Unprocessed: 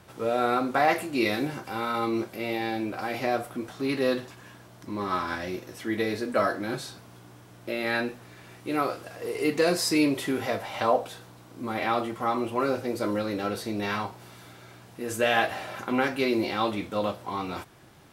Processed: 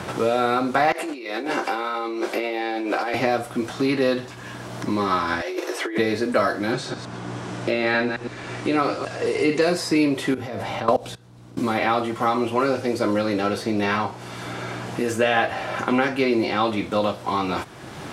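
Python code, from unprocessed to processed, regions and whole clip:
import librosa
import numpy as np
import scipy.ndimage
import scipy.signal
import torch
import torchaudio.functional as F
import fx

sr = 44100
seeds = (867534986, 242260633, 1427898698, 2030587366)

y = fx.chain(x, sr, fx.high_shelf(hz=9600.0, db=-7.5),
    fx.over_compress(threshold_db=-36.0, ratio=-1.0),
    fx.highpass(hz=310.0, slope=24), at=(0.92, 3.14))
y = fx.chain(y, sr, fx.steep_highpass(hz=320.0, slope=72),
    fx.over_compress(threshold_db=-39.0, ratio=-1.0), at=(5.41, 5.98))
y = fx.chain(y, sr, fx.reverse_delay(ms=111, wet_db=-8.5),
    fx.lowpass(hz=9000.0, slope=24), at=(6.72, 9.61))
y = fx.chain(y, sr, fx.level_steps(step_db=22),
    fx.low_shelf(hz=330.0, db=12.0), at=(10.34, 11.59))
y = fx.chain(y, sr, fx.notch(hz=3900.0, q=27.0),
    fx.resample_linear(factor=2), at=(12.37, 16.65))
y = scipy.signal.sosfilt(scipy.signal.butter(2, 9500.0, 'lowpass', fs=sr, output='sos'), y)
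y = fx.band_squash(y, sr, depth_pct=70)
y = y * librosa.db_to_amplitude(5.5)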